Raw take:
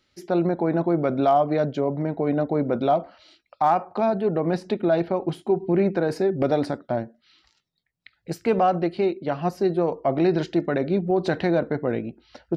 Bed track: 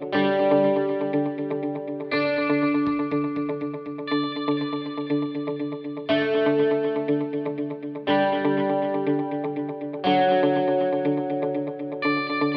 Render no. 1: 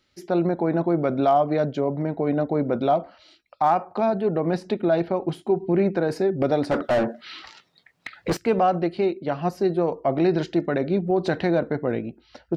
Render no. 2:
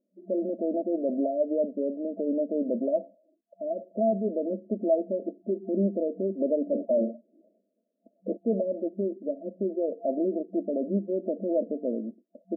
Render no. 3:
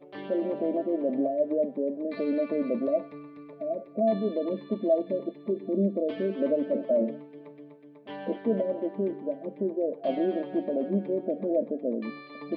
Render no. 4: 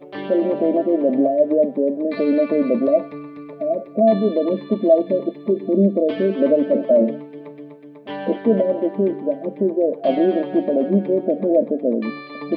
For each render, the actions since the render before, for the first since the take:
0:06.71–0:08.37: mid-hump overdrive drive 33 dB, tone 1,400 Hz, clips at −12.5 dBFS
brick-wall band-pass 190–680 Hz; parametric band 390 Hz −8 dB 0.78 octaves
mix in bed track −19 dB
level +10 dB

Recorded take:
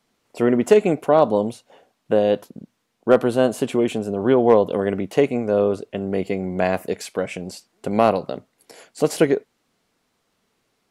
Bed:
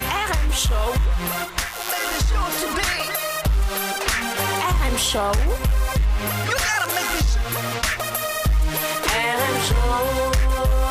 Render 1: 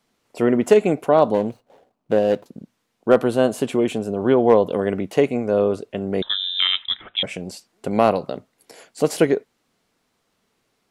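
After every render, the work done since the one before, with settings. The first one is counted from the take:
0:01.34–0:02.46: running median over 25 samples
0:06.22–0:07.23: voice inversion scrambler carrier 3,800 Hz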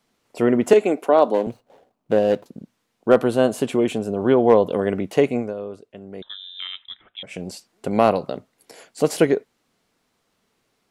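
0:00.73–0:01.47: high-pass filter 240 Hz 24 dB per octave
0:05.40–0:07.40: duck −13 dB, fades 0.14 s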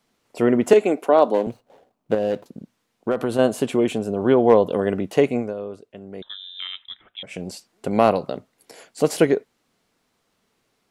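0:02.14–0:03.39: downward compressor, threshold −17 dBFS
0:04.65–0:05.14: notch filter 2,200 Hz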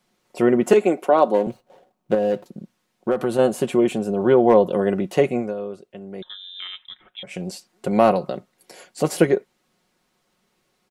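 dynamic equaliser 3,900 Hz, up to −3 dB, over −37 dBFS, Q 0.84
comb filter 5.5 ms, depth 50%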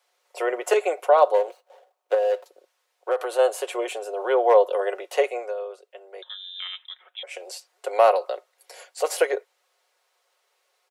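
Butterworth high-pass 450 Hz 48 dB per octave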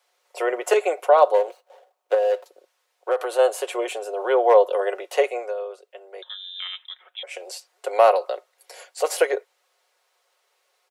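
level +1.5 dB

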